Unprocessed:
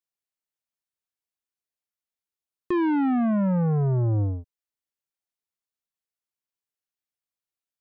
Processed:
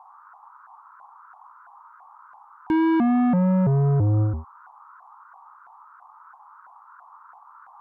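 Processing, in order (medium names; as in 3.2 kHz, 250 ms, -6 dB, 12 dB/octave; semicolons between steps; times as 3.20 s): band noise 850–1300 Hz -52 dBFS; vibrato with a chosen wave saw up 3 Hz, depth 250 cents; trim +3 dB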